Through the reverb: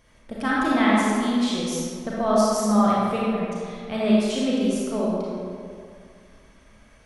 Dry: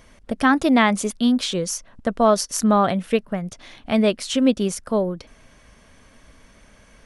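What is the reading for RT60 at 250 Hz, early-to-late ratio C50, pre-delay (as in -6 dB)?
2.3 s, -4.0 dB, 30 ms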